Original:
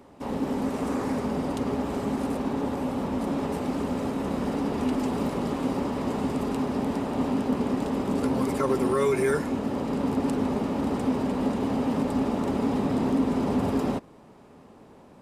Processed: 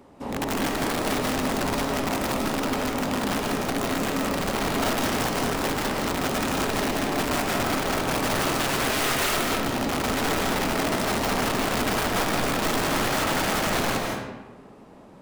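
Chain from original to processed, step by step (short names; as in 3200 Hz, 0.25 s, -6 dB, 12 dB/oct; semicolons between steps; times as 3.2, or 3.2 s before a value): 1.84–3.99 notches 60/120/180/240/300/360/420/480/540 Hz; wrapped overs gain 22 dB; reverb RT60 1.1 s, pre-delay 0.12 s, DRR 0 dB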